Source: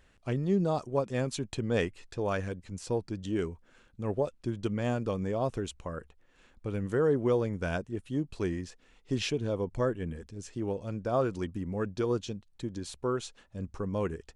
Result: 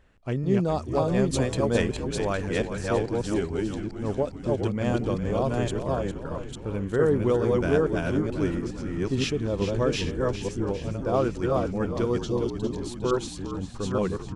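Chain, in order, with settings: reverse delay 0.437 s, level -1 dB; 1.33–1.82 high shelf 8600 Hz +9.5 dB; 12.19–12.72 spectral delete 1100–2600 Hz; on a send: frequency-shifting echo 0.405 s, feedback 61%, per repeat -62 Hz, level -9.5 dB; on the sum: mismatched tape noise reduction decoder only; gain +3 dB

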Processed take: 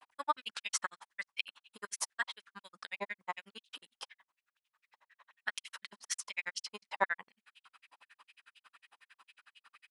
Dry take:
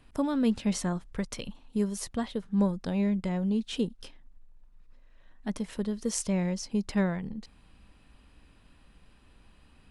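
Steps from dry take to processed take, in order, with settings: grains 55 ms, grains 11/s, spray 20 ms, pitch spread up and down by 0 st; stepped high-pass 8.1 Hz 890–2900 Hz; gain +5 dB

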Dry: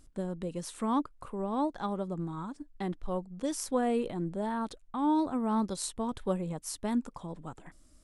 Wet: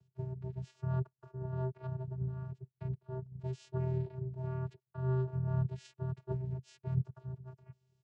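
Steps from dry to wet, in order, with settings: harmoniser -12 st -2 dB, -7 st -3 dB, -4 st -8 dB; vocoder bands 8, square 129 Hz; gain -7 dB

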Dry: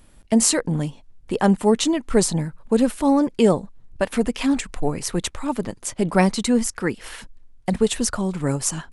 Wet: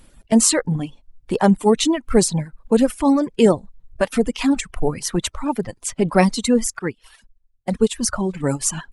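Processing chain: bin magnitudes rounded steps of 15 dB; reverb removal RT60 1.1 s; 6.79–8.03 upward expander 1.5:1, over -43 dBFS; gain +3 dB

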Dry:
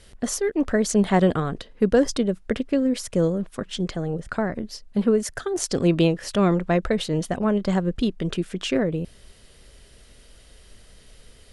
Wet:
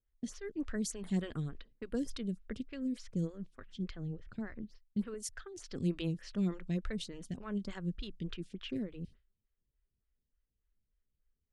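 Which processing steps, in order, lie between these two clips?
low-pass opened by the level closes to 1300 Hz, open at -17 dBFS; passive tone stack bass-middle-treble 6-0-2; gate with hold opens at -47 dBFS; 5.14–5.71 bell 180 Hz -13 dB 1.4 oct; photocell phaser 3.4 Hz; gain +7 dB

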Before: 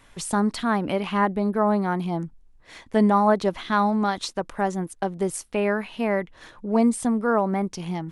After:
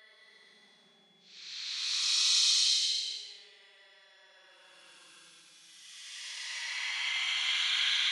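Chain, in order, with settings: high shelf 3400 Hz +11 dB; negative-ratio compressor -28 dBFS, ratio -0.5; Butterworth band-pass 3700 Hz, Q 0.75; Paulstretch 30×, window 0.05 s, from 3.34; whine 3400 Hz -62 dBFS; gain -2 dB

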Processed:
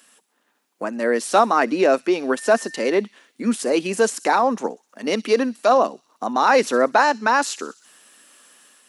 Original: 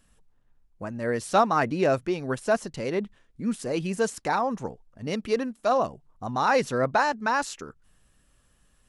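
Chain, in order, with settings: steep high-pass 230 Hz 36 dB/oct; in parallel at -1.5 dB: limiter -19.5 dBFS, peak gain reduction 11.5 dB; 2.36–2.99 on the sum: whine 1800 Hz -42 dBFS; AGC gain up to 4 dB; on a send: thin delay 63 ms, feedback 52%, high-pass 4000 Hz, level -15.5 dB; on the sum: mismatched tape noise reduction encoder only

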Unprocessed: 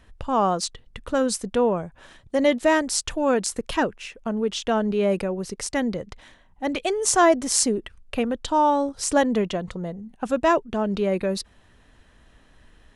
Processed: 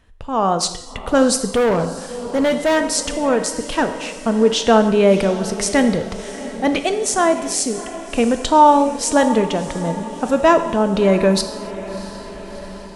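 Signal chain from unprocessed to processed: AGC gain up to 15.5 dB; on a send: diffused feedback echo 0.678 s, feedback 59%, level -15 dB; on the sum: non-linear reverb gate 0.32 s falling, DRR 8.5 dB; 1.46–2.77 overloaded stage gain 11 dB; gain -2 dB

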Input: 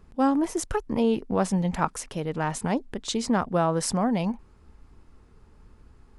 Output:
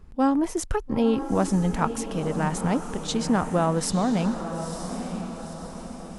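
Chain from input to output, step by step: low shelf 120 Hz +6.5 dB; diffused feedback echo 0.941 s, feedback 50%, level -8.5 dB

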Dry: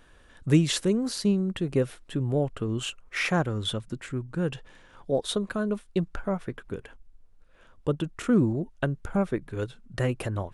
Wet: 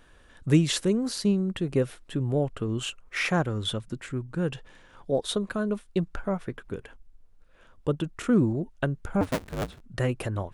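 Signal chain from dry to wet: 9.21–9.81 cycle switcher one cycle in 2, inverted

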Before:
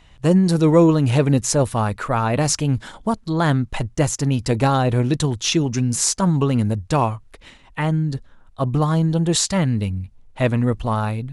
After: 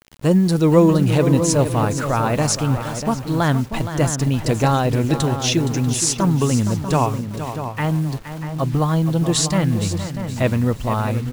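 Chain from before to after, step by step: bit-crush 7-bit; outdoor echo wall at 110 m, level -9 dB; lo-fi delay 0.468 s, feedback 35%, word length 6-bit, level -10 dB

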